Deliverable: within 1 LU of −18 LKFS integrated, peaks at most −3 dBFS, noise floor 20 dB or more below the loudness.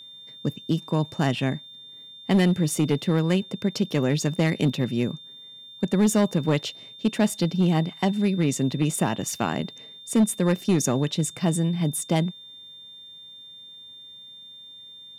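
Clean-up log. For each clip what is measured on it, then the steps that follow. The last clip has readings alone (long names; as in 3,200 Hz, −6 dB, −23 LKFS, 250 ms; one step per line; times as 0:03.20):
share of clipped samples 1.0%; peaks flattened at −14.0 dBFS; interfering tone 3,600 Hz; level of the tone −42 dBFS; integrated loudness −24.5 LKFS; sample peak −14.0 dBFS; target loudness −18.0 LKFS
→ clipped peaks rebuilt −14 dBFS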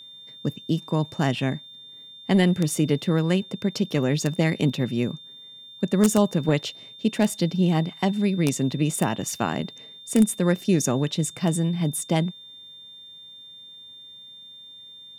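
share of clipped samples 0.0%; interfering tone 3,600 Hz; level of the tone −42 dBFS
→ notch filter 3,600 Hz, Q 30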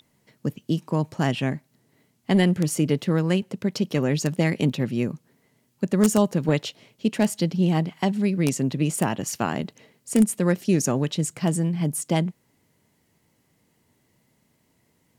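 interfering tone none found; integrated loudness −24.0 LKFS; sample peak −5.0 dBFS; target loudness −18.0 LKFS
→ level +6 dB
brickwall limiter −3 dBFS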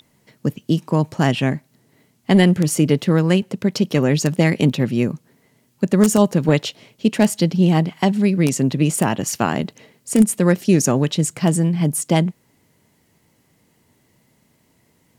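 integrated loudness −18.0 LKFS; sample peak −3.0 dBFS; background noise floor −61 dBFS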